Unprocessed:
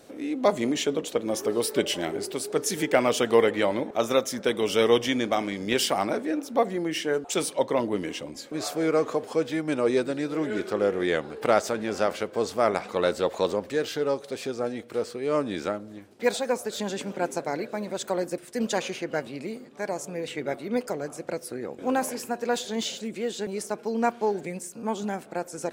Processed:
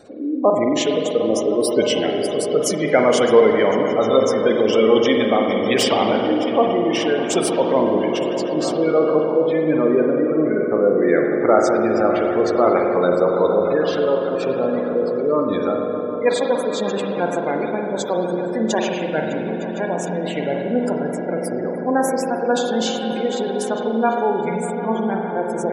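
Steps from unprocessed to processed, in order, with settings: swelling echo 0.152 s, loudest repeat 5, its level -14 dB; spectral gate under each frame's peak -20 dB strong; spring tank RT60 1.9 s, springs 45 ms, chirp 70 ms, DRR 2 dB; gain +5.5 dB

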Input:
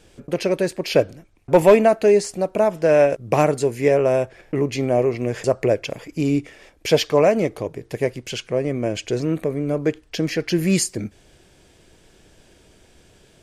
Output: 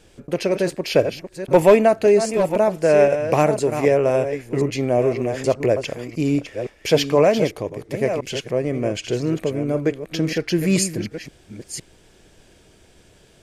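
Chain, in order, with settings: reverse delay 0.513 s, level -9 dB

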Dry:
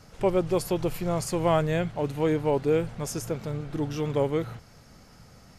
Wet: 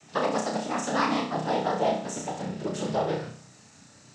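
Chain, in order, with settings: speed glide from 159% -> 110%; high shelf 3900 Hz +9 dB; noise vocoder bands 12; flutter echo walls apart 5.5 m, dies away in 0.48 s; gain -3.5 dB

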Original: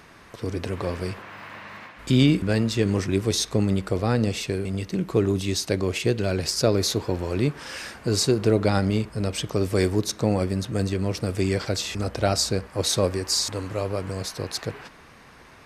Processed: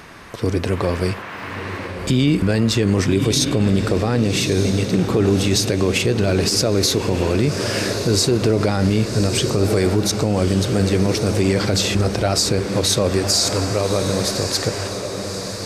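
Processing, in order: diffused feedback echo 1.177 s, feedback 55%, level -10 dB; limiter -16.5 dBFS, peak gain reduction 10 dB; gain +9 dB

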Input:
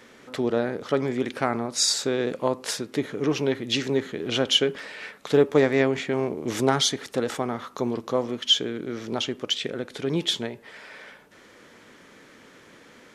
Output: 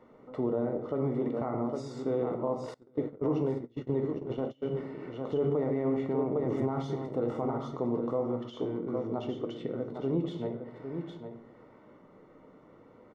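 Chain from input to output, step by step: on a send: echo 0.806 s -8.5 dB; on the sum: shoebox room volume 150 m³, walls mixed, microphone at 0.52 m; limiter -15 dBFS, peak gain reduction 11 dB; polynomial smoothing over 65 samples; 2.74–4.75 gate -26 dBFS, range -26 dB; gain -4.5 dB

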